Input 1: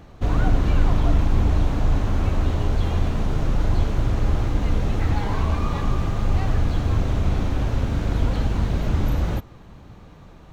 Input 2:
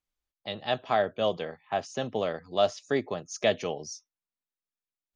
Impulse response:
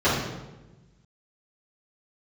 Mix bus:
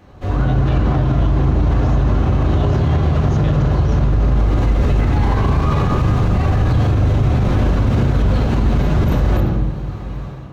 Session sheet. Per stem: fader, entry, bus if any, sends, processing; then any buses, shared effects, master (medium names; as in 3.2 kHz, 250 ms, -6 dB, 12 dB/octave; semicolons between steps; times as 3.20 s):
-3.5 dB, 0.00 s, send -13 dB, bass shelf 480 Hz -3 dB; level rider gain up to 10.5 dB; peak limiter -7.5 dBFS, peak gain reduction 5 dB; auto duck -14 dB, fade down 0.25 s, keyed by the second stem
-4.0 dB, 0.00 s, no send, none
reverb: on, RT60 1.1 s, pre-delay 3 ms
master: peak limiter -7.5 dBFS, peak gain reduction 9.5 dB